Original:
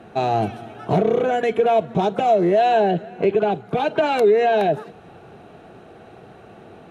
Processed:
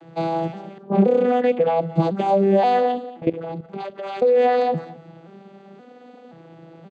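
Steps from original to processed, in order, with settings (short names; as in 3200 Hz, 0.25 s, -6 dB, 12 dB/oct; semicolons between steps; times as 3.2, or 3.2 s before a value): arpeggiated vocoder minor triad, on E3, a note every 0.526 s; 0.78–1.8 low-pass opened by the level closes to 450 Hz, open at -12 dBFS; high shelf 2500 Hz +11 dB; 3.1–4.39 level quantiser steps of 15 dB; echo 0.223 s -19 dB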